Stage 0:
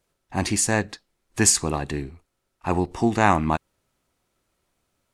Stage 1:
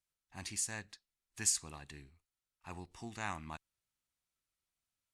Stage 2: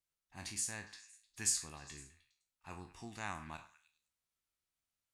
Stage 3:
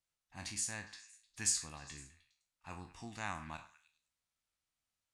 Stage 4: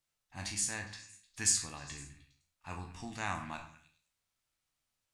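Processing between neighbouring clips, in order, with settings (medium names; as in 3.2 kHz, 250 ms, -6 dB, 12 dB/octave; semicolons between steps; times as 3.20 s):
amplifier tone stack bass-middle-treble 5-5-5; trim -7.5 dB
spectral sustain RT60 0.31 s; repeats whose band climbs or falls 102 ms, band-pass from 1.2 kHz, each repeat 0.7 oct, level -11.5 dB; trim -3 dB
low-pass 9.8 kHz 12 dB/octave; peaking EQ 390 Hz -8.5 dB 0.23 oct; trim +1.5 dB
reverberation RT60 0.55 s, pre-delay 7 ms, DRR 7 dB; trim +3.5 dB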